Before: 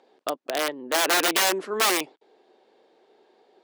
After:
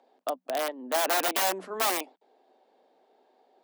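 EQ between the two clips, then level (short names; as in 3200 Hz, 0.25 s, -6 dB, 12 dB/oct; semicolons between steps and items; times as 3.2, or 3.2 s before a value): rippled Chebyshev high-pass 180 Hz, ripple 9 dB; high shelf 12000 Hz +10.5 dB; 0.0 dB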